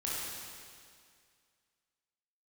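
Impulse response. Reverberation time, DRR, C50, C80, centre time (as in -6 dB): 2.1 s, -7.5 dB, -3.5 dB, -1.0 dB, 0.144 s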